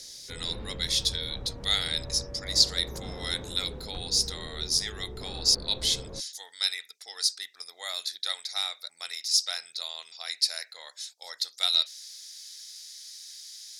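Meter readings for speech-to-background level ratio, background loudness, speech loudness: 14.0 dB, -42.0 LUFS, -28.0 LUFS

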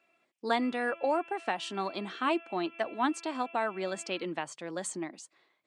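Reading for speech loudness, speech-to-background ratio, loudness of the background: -33.0 LUFS, 17.5 dB, -50.5 LUFS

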